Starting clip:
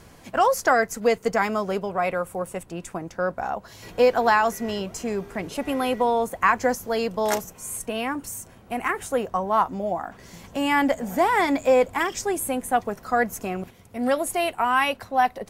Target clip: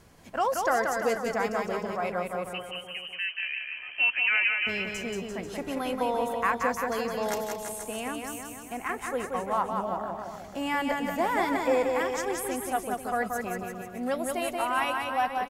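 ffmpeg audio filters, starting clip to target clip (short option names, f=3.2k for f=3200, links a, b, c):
-filter_complex "[0:a]asettb=1/sr,asplit=3[a][b][c];[a]atrim=end=2.534[d];[b]atrim=start=2.53:end=4.67,asetpts=PTS-STARTPTS,afade=t=in:d=0.004:c=qsin,afade=t=out:st=2.136:d=0.004:c=qsin,lowpass=f=2.7k:t=q:w=0.5098,lowpass=f=2.7k:t=q:w=0.6013,lowpass=f=2.7k:t=q:w=0.9,lowpass=f=2.7k:t=q:w=2.563,afreqshift=-3200[e];[c]atrim=start=4.666[f];[d][e]acrossfade=d=0.004:c1=hsin:c2=qsin[g];[g][f]acrossfade=d=0.004:c1=qsin:c2=hsin,aecho=1:1:180|342|487.8|619|737.1:0.631|0.398|0.251|0.158|0.1,volume=-7.5dB"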